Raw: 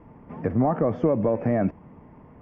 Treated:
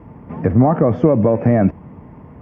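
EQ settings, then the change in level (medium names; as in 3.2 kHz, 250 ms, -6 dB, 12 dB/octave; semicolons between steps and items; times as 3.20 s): high-pass 67 Hz; bass shelf 120 Hz +10 dB; +7.0 dB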